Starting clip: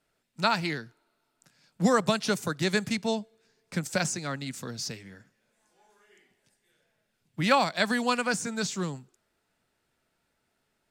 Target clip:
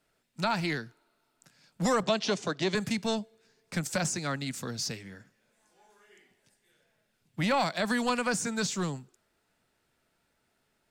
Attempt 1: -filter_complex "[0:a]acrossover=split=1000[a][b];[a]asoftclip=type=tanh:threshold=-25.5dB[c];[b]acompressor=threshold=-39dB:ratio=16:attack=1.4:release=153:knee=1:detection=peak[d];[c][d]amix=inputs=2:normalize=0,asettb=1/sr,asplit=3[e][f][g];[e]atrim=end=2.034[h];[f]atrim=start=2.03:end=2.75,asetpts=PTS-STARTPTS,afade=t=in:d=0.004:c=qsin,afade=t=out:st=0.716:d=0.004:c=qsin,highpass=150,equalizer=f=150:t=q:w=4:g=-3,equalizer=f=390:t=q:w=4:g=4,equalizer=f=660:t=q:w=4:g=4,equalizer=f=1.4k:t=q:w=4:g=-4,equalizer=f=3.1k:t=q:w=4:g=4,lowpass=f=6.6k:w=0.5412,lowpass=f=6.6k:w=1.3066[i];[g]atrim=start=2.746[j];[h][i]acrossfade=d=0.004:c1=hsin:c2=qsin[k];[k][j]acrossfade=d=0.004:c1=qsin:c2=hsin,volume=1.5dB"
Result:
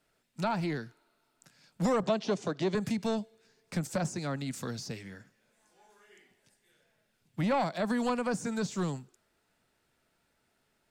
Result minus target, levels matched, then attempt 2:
compressor: peak gain reduction +10.5 dB
-filter_complex "[0:a]acrossover=split=1000[a][b];[a]asoftclip=type=tanh:threshold=-25.5dB[c];[b]acompressor=threshold=-28dB:ratio=16:attack=1.4:release=153:knee=1:detection=peak[d];[c][d]amix=inputs=2:normalize=0,asettb=1/sr,asplit=3[e][f][g];[e]atrim=end=2.034[h];[f]atrim=start=2.03:end=2.75,asetpts=PTS-STARTPTS,afade=t=in:d=0.004:c=qsin,afade=t=out:st=0.716:d=0.004:c=qsin,highpass=150,equalizer=f=150:t=q:w=4:g=-3,equalizer=f=390:t=q:w=4:g=4,equalizer=f=660:t=q:w=4:g=4,equalizer=f=1.4k:t=q:w=4:g=-4,equalizer=f=3.1k:t=q:w=4:g=4,lowpass=f=6.6k:w=0.5412,lowpass=f=6.6k:w=1.3066[i];[g]atrim=start=2.746[j];[h][i]acrossfade=d=0.004:c1=hsin:c2=qsin[k];[k][j]acrossfade=d=0.004:c1=qsin:c2=hsin,volume=1.5dB"

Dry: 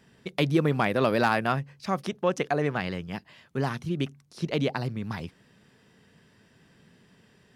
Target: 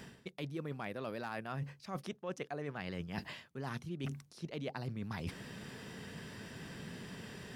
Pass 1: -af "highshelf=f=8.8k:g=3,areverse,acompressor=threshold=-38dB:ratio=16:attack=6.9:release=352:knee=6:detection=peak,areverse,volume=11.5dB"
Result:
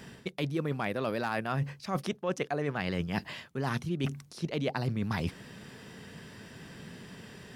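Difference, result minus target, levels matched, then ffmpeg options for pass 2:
compressor: peak gain reduction -9.5 dB
-af "highshelf=f=8.8k:g=3,areverse,acompressor=threshold=-48dB:ratio=16:attack=6.9:release=352:knee=6:detection=peak,areverse,volume=11.5dB"

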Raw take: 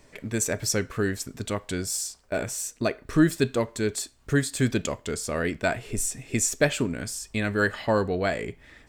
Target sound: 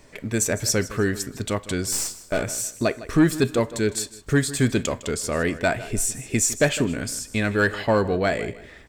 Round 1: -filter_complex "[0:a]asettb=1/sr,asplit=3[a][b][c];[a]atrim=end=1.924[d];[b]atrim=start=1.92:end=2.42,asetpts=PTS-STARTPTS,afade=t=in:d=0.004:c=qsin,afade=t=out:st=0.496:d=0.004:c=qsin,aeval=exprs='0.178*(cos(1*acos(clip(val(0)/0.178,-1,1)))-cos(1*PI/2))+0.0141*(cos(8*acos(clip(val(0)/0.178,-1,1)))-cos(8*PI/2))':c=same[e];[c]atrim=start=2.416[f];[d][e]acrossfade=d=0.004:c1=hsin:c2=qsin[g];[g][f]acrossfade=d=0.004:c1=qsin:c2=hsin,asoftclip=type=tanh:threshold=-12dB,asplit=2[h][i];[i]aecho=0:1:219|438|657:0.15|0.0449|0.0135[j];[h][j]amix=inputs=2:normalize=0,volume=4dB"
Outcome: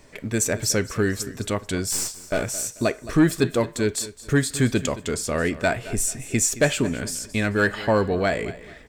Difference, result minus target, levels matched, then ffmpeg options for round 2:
echo 62 ms late
-filter_complex "[0:a]asettb=1/sr,asplit=3[a][b][c];[a]atrim=end=1.924[d];[b]atrim=start=1.92:end=2.42,asetpts=PTS-STARTPTS,afade=t=in:d=0.004:c=qsin,afade=t=out:st=0.496:d=0.004:c=qsin,aeval=exprs='0.178*(cos(1*acos(clip(val(0)/0.178,-1,1)))-cos(1*PI/2))+0.0141*(cos(8*acos(clip(val(0)/0.178,-1,1)))-cos(8*PI/2))':c=same[e];[c]atrim=start=2.416[f];[d][e]acrossfade=d=0.004:c1=hsin:c2=qsin[g];[g][f]acrossfade=d=0.004:c1=qsin:c2=hsin,asoftclip=type=tanh:threshold=-12dB,asplit=2[h][i];[i]aecho=0:1:157|314|471:0.15|0.0449|0.0135[j];[h][j]amix=inputs=2:normalize=0,volume=4dB"

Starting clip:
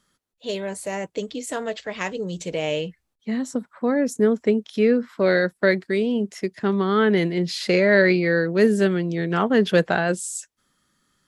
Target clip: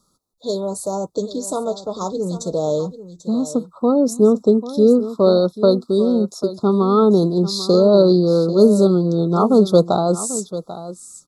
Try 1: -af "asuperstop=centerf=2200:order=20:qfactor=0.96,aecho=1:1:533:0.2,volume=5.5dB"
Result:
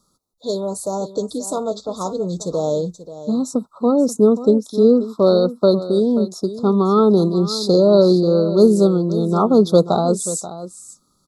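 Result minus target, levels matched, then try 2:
echo 0.258 s early
-af "asuperstop=centerf=2200:order=20:qfactor=0.96,aecho=1:1:791:0.2,volume=5.5dB"

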